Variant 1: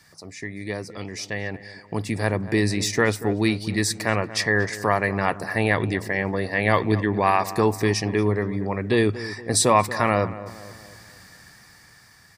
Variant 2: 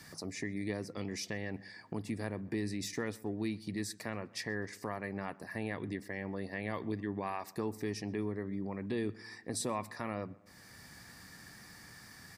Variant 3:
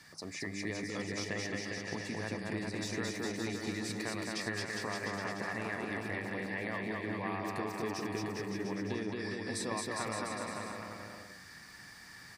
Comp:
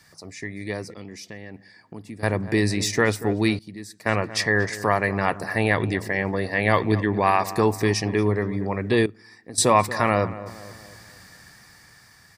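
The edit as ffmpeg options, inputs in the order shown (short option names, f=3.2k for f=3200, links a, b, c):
-filter_complex "[1:a]asplit=3[a][b][c];[0:a]asplit=4[d][e][f][g];[d]atrim=end=0.942[h];[a]atrim=start=0.938:end=2.232[i];[e]atrim=start=2.228:end=3.592[j];[b]atrim=start=3.588:end=4.062[k];[f]atrim=start=4.058:end=9.062[l];[c]atrim=start=9.058:end=9.582[m];[g]atrim=start=9.578[n];[h][i]acrossfade=d=0.004:c1=hsin:c2=hsin[o];[o][j]acrossfade=d=0.004:c1=hsin:c2=hsin[p];[p][k]acrossfade=d=0.004:c1=hsin:c2=hsin[q];[q][l]acrossfade=d=0.004:c1=hsin:c2=hsin[r];[r][m]acrossfade=d=0.004:c1=hsin:c2=hsin[s];[s][n]acrossfade=d=0.004:c1=hsin:c2=hsin"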